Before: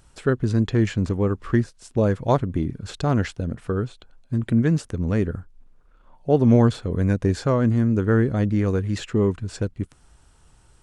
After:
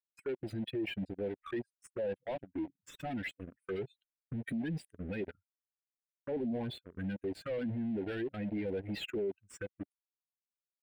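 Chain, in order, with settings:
spectral dynamics exaggerated over time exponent 3
camcorder AGC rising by 13 dB per second
high-pass filter 250 Hz 12 dB per octave
high-shelf EQ 7,800 Hz +2 dB
leveller curve on the samples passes 3
noise gate with hold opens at −59 dBFS
brickwall limiter −28.5 dBFS, peak gain reduction 19 dB
mid-hump overdrive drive 16 dB, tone 1,100 Hz, clips at −28.5 dBFS
phaser swept by the level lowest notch 600 Hz, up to 1,200 Hz, full sweep at −33.5 dBFS
low-shelf EQ 460 Hz −4.5 dB
level +3.5 dB

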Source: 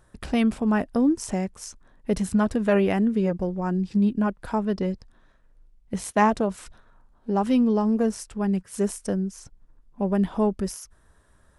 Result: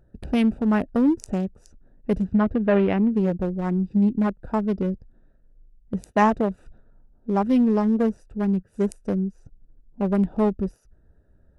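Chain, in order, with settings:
adaptive Wiener filter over 41 samples
0:02.24–0:03.12: Bessel low-pass filter 3,100 Hz, order 4
in parallel at −9 dB: soft clipping −18 dBFS, distortion −15 dB

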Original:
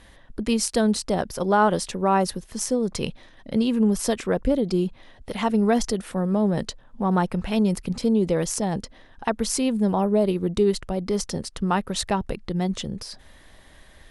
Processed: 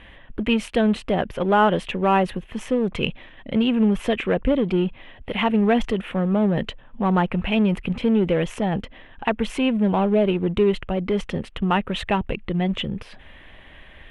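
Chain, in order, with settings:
drawn EQ curve 1,500 Hz 0 dB, 2,600 Hz +4 dB, 3,700 Hz −6 dB, 11,000 Hz −12 dB
in parallel at −5 dB: gain into a clipping stage and back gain 27 dB
on the sum: high shelf with overshoot 4,000 Hz −7.5 dB, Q 3

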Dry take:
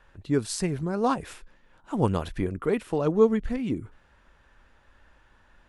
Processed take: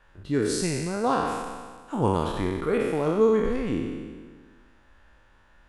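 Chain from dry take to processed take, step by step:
peak hold with a decay on every bin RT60 1.57 s
level −2.5 dB

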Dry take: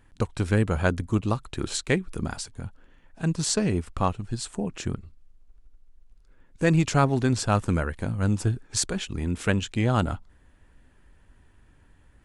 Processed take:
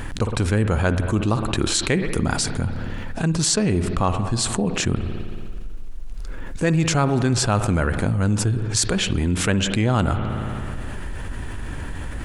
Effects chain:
spring reverb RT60 1.6 s, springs 56 ms, chirp 30 ms, DRR 15 dB
envelope flattener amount 70%

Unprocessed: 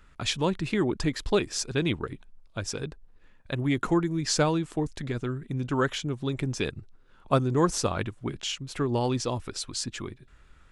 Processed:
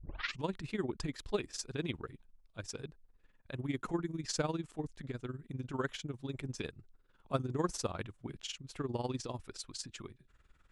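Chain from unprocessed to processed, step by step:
turntable start at the beginning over 0.43 s
amplitude modulation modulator 20 Hz, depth 65%
level −7.5 dB

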